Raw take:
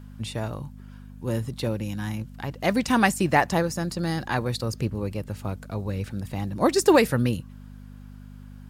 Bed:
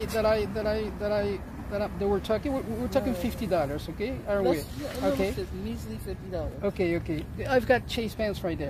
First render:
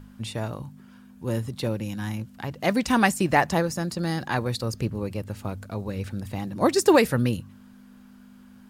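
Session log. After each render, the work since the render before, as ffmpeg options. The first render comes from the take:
-af "bandreject=f=50:t=h:w=4,bandreject=f=100:t=h:w=4,bandreject=f=150:t=h:w=4"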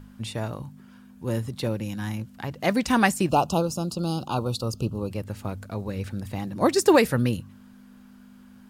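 -filter_complex "[0:a]asettb=1/sr,asplit=3[a][b][c];[a]atrim=end=3.294[d];[b]atrim=start=3.29:end=5.11,asetpts=PTS-STARTPTS,afade=t=in:d=0.004:c=qsin,afade=t=out:st=1.816:d=0.004:c=qsin,asuperstop=centerf=1900:order=12:qfactor=1.7[e];[c]atrim=start=5.106[f];[d][e]acrossfade=d=0.004:c1=hsin:c2=qsin[g];[g][f]acrossfade=d=0.004:c1=qsin:c2=hsin"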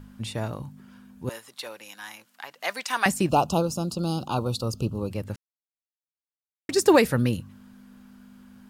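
-filter_complex "[0:a]asettb=1/sr,asplit=3[a][b][c];[a]atrim=end=1.294[d];[b]atrim=start=1.29:end=3.06,asetpts=PTS-STARTPTS,afade=t=in:d=0.004:c=qsin,afade=t=out:st=1.766:d=0.004:c=qsin,highpass=920[e];[c]atrim=start=3.056[f];[d][e]acrossfade=d=0.004:c1=hsin:c2=qsin[g];[g][f]acrossfade=d=0.004:c1=qsin:c2=hsin,asplit=3[h][i][j];[h]atrim=end=5.36,asetpts=PTS-STARTPTS,afade=t=out:st=5.356:d=0.004:c=hsin[k];[i]atrim=start=5.36:end=6.69,asetpts=PTS-STARTPTS,volume=0[l];[j]atrim=start=6.69,asetpts=PTS-STARTPTS,afade=t=in:d=0.004:c=hsin[m];[k][l][m]concat=n=3:v=0:a=1"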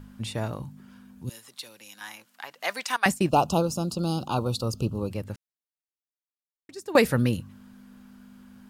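-filter_complex "[0:a]asettb=1/sr,asplit=3[a][b][c];[a]atrim=end=0.644[d];[b]atrim=start=0.64:end=2.01,asetpts=PTS-STARTPTS,afade=t=in:d=0.004:c=qsin,afade=t=out:st=1.366:d=0.004:c=qsin,acrossover=split=260|3000[e][f][g];[f]acompressor=threshold=-52dB:ratio=6:attack=3.2:release=140:knee=2.83:detection=peak[h];[e][h][g]amix=inputs=3:normalize=0[i];[c]atrim=start=2.006[j];[d][i]acrossfade=d=0.004:c1=hsin:c2=qsin[k];[k][j]acrossfade=d=0.004:c1=qsin:c2=hsin,asettb=1/sr,asplit=3[l][m][n];[l]atrim=end=2.964[o];[m]atrim=start=2.96:end=3.45,asetpts=PTS-STARTPTS,afade=t=in:d=0.004:c=qsin,afade=t=out:st=0.486:d=0.004:c=qsin,agate=range=-33dB:threshold=-26dB:ratio=3:release=100:detection=peak[p];[n]atrim=start=3.446[q];[o][p]acrossfade=d=0.004:c1=hsin:c2=qsin[r];[r][q]acrossfade=d=0.004:c1=qsin:c2=hsin,asplit=2[s][t];[s]atrim=end=6.95,asetpts=PTS-STARTPTS,afade=t=out:st=5.04:d=1.91:c=qua:silence=0.11885[u];[t]atrim=start=6.95,asetpts=PTS-STARTPTS,afade=t=in:d=0.004:c=hsin:silence=0.11885[v];[u][v]concat=n=2:v=0:a=1"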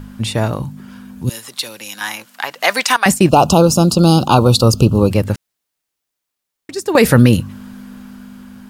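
-af "dynaudnorm=f=520:g=5:m=5dB,alimiter=level_in=13dB:limit=-1dB:release=50:level=0:latency=1"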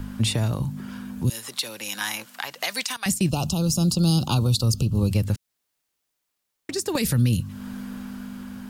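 -filter_complex "[0:a]acrossover=split=200|3000[a][b][c];[b]acompressor=threshold=-28dB:ratio=4[d];[a][d][c]amix=inputs=3:normalize=0,alimiter=limit=-12.5dB:level=0:latency=1:release=405"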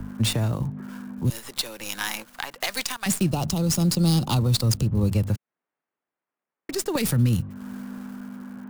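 -filter_complex "[0:a]acrossover=split=140|2100[a][b][c];[a]aeval=exprs='sgn(val(0))*max(abs(val(0))-0.00531,0)':c=same[d];[c]acrusher=bits=5:dc=4:mix=0:aa=0.000001[e];[d][b][e]amix=inputs=3:normalize=0"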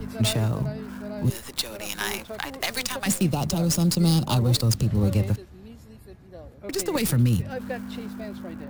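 -filter_complex "[1:a]volume=-10.5dB[a];[0:a][a]amix=inputs=2:normalize=0"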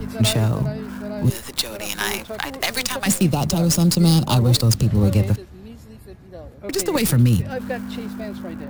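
-af "volume=5dB"

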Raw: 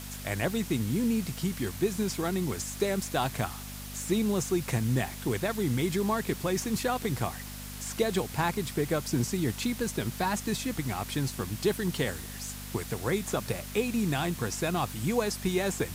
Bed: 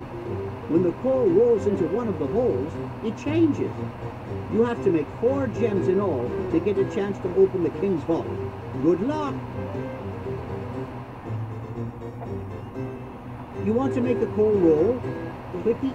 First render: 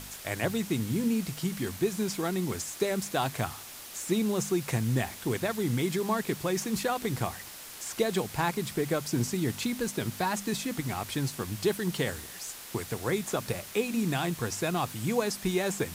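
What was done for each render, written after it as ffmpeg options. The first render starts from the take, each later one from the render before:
-af "bandreject=f=50:t=h:w=4,bandreject=f=100:t=h:w=4,bandreject=f=150:t=h:w=4,bandreject=f=200:t=h:w=4,bandreject=f=250:t=h:w=4"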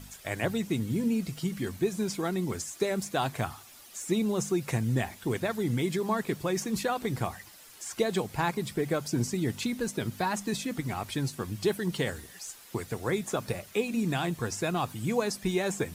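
-af "afftdn=nr=10:nf=-45"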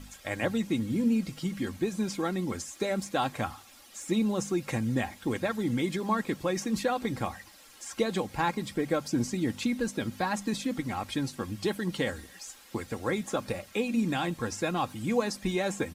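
-af "highshelf=f=8.8k:g=-9,aecho=1:1:3.7:0.45"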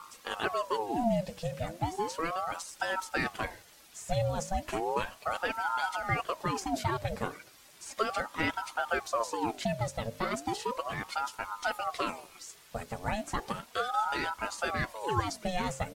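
-af "aeval=exprs='val(0)*sin(2*PI*740*n/s+740*0.55/0.35*sin(2*PI*0.35*n/s))':c=same"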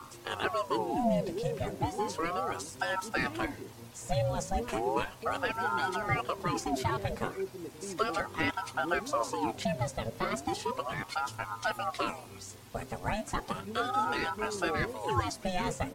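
-filter_complex "[1:a]volume=-18.5dB[a];[0:a][a]amix=inputs=2:normalize=0"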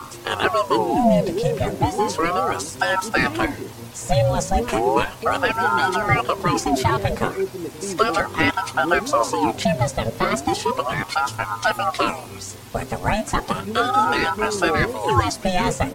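-af "volume=12dB"

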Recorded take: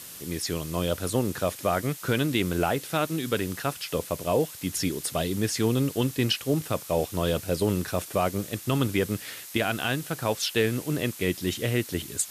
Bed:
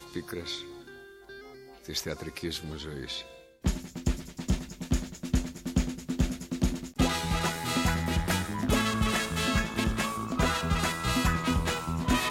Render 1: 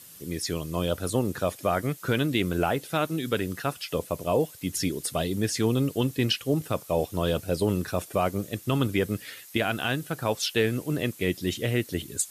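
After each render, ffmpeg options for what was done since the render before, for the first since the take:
-af "afftdn=nr=9:nf=-43"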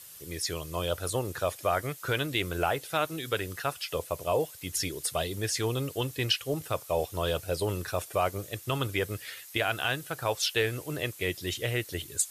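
-af "equalizer=f=220:t=o:w=1.1:g=-15"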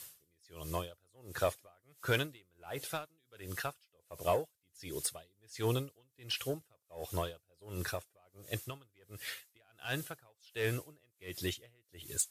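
-af "asoftclip=type=tanh:threshold=-19dB,aeval=exprs='val(0)*pow(10,-39*(0.5-0.5*cos(2*PI*1.4*n/s))/20)':c=same"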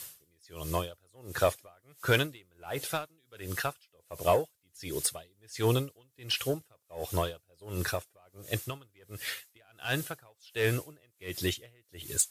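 -af "volume=6dB"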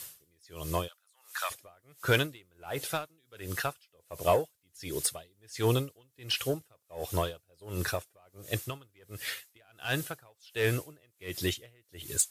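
-filter_complex "[0:a]asplit=3[a][b][c];[a]afade=t=out:st=0.87:d=0.02[d];[b]highpass=f=1k:w=0.5412,highpass=f=1k:w=1.3066,afade=t=in:st=0.87:d=0.02,afade=t=out:st=1.5:d=0.02[e];[c]afade=t=in:st=1.5:d=0.02[f];[d][e][f]amix=inputs=3:normalize=0"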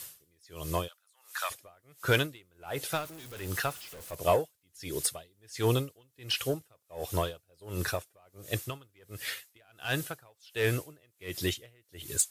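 -filter_complex "[0:a]asettb=1/sr,asplit=3[a][b][c];[a]atrim=end=2.924[d];[b]atrim=start=2.92:end=4.15,asetpts=PTS-STARTPTS,afade=t=in:d=0.004:c=qsin,afade=t=out:st=1.226:d=0.004:c=qsin,aeval=exprs='val(0)+0.5*0.00891*sgn(val(0))':c=same[e];[c]atrim=start=4.146[f];[d][e]acrossfade=d=0.004:c1=hsin:c2=qsin[g];[g][f]acrossfade=d=0.004:c1=qsin:c2=hsin"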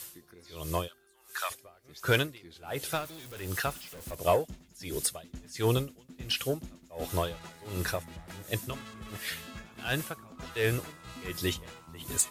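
-filter_complex "[1:a]volume=-18dB[a];[0:a][a]amix=inputs=2:normalize=0"

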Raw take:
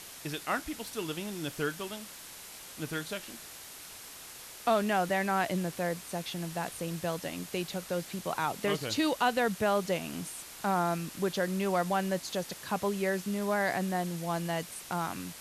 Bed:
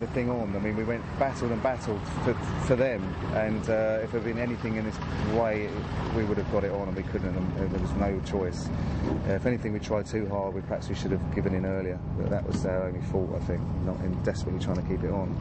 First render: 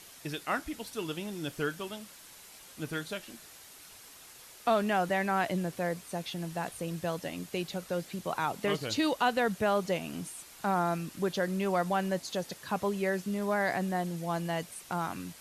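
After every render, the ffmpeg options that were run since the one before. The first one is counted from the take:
-af "afftdn=nr=6:nf=-47"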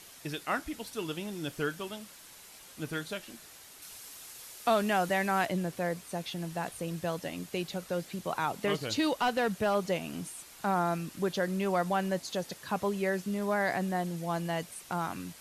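-filter_complex "[0:a]asettb=1/sr,asplit=3[a][b][c];[a]atrim=end=3.824[d];[b]atrim=start=3.82:end=5.46,asetpts=PTS-STARTPTS,afade=t=in:d=0.004:c=qsin,afade=t=out:st=1.636:d=0.004:c=qsin,highshelf=f=3.7k:g=6[e];[c]atrim=start=5.456[f];[d][e]acrossfade=d=0.004:c1=hsin:c2=qsin[g];[g][f]acrossfade=d=0.004:c1=qsin:c2=hsin,asettb=1/sr,asplit=3[h][i][j];[h]atrim=end=8.994[k];[i]atrim=start=8.99:end=9.75,asetpts=PTS-STARTPTS,afade=t=in:d=0.004:c=qsin,afade=t=out:st=0.756:d=0.004:c=qsin,asoftclip=type=hard:threshold=-22dB[l];[j]atrim=start=9.746[m];[k][l]acrossfade=d=0.004:c1=hsin:c2=qsin[n];[n][m]acrossfade=d=0.004:c1=qsin:c2=hsin"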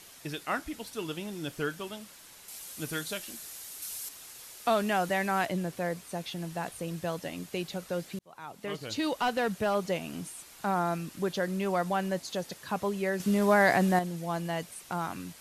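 -filter_complex "[0:a]asettb=1/sr,asplit=3[a][b][c];[a]atrim=end=2.484[d];[b]atrim=start=2.48:end=4.09,asetpts=PTS-STARTPTS,afade=t=in:d=0.004:c=qsin,afade=t=out:st=1.606:d=0.004:c=qsin,highshelf=f=4.8k:g=11.5[e];[c]atrim=start=4.086[f];[d][e]acrossfade=d=0.004:c1=hsin:c2=qsin[g];[g][f]acrossfade=d=0.004:c1=qsin:c2=hsin,asplit=4[h][i][j][k];[h]atrim=end=8.19,asetpts=PTS-STARTPTS,afade=t=out:st=8.186:d=0.004:c=hsin[l];[i]atrim=start=8.19:end=13.202,asetpts=PTS-STARTPTS,afade=t=in:d=1.05[m];[j]atrim=start=13.198:end=13.992,asetpts=PTS-STARTPTS,volume=7dB[n];[k]atrim=start=13.988[o];[l][m]concat=n=2:v=0:a=1[p];[p][n]acrossfade=d=0.004:c1=hsin:c2=hsin[q];[q][o]acrossfade=d=0.004:c1=hsin:c2=hsin"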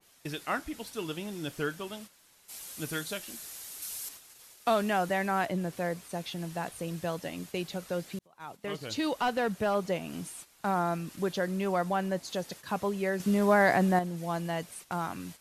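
-af "agate=range=-10dB:threshold=-46dB:ratio=16:detection=peak,adynamicequalizer=threshold=0.00891:dfrequency=2000:dqfactor=0.7:tfrequency=2000:tqfactor=0.7:attack=5:release=100:ratio=0.375:range=2.5:mode=cutabove:tftype=highshelf"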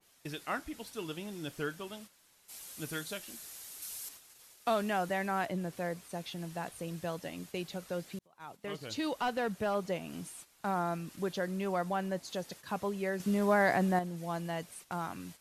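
-af "volume=-4dB"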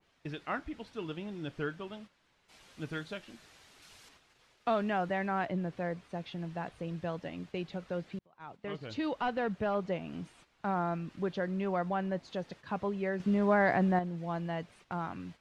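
-af "lowpass=3.1k,lowshelf=f=180:g=4.5"

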